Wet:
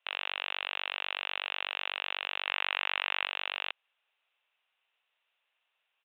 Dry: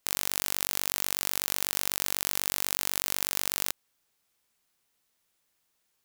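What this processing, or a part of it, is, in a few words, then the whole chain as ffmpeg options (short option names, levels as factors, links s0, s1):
musical greeting card: -filter_complex "[0:a]asettb=1/sr,asplit=3[s0][s1][s2];[s0]atrim=end=2.464[s3];[s1]atrim=start=2.46:end=3.26,asetpts=PTS-STARTPTS,afade=t=in:d=0.004:c=qsin,afade=t=out:st=0.796:d=0.004:c=qsin,equalizer=f=125:t=o:w=1:g=4,equalizer=f=1000:t=o:w=1:g=4,equalizer=f=2000:t=o:w=1:g=5[s4];[s2]atrim=start=3.256[s5];[s3][s4]acrossfade=d=0.004:c1=hsin:c2=qsin[s6];[s6][s5]acrossfade=d=0.004:c1=qsin:c2=hsin,aresample=8000,aresample=44100,highpass=f=560:w=0.5412,highpass=f=560:w=1.3066,equalizer=f=2700:t=o:w=0.32:g=8.5"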